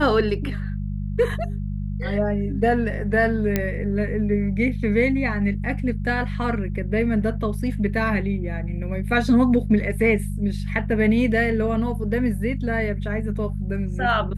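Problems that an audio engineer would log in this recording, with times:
hum 50 Hz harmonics 4 -27 dBFS
3.56 pop -7 dBFS

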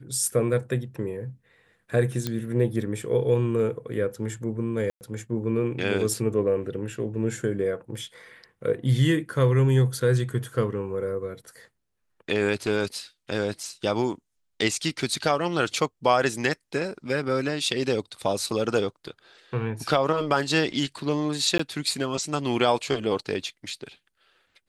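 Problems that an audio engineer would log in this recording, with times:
2.27 pop -13 dBFS
4.9–5.01 gap 0.109 s
21.58–21.59 gap 14 ms

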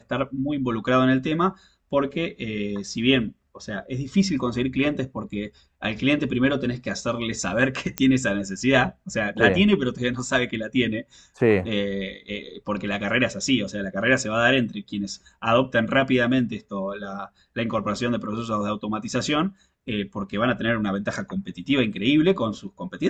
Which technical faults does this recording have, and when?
7.98 pop -8 dBFS

